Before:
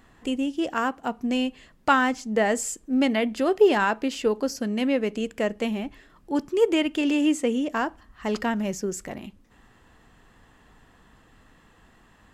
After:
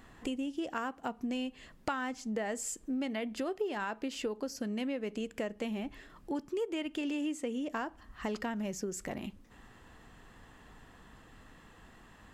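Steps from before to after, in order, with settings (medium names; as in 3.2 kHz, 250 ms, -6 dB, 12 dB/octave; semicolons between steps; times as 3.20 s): compression 5:1, threshold -34 dBFS, peak gain reduction 19 dB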